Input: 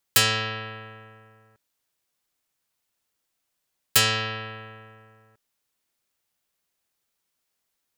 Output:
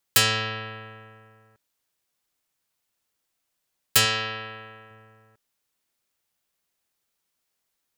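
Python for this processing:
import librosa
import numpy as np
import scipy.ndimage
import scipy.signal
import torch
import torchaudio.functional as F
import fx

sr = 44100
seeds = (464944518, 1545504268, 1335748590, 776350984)

y = fx.low_shelf(x, sr, hz=200.0, db=-7.5, at=(4.05, 4.91))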